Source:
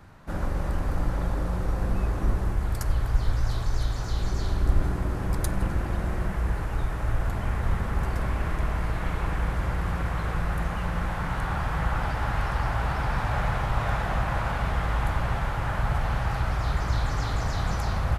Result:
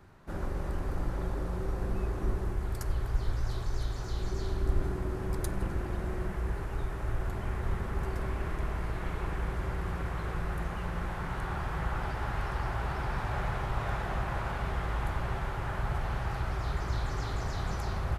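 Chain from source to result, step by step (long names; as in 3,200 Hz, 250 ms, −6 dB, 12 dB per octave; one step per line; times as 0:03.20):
parametric band 380 Hz +10 dB 0.23 octaves
level −6.5 dB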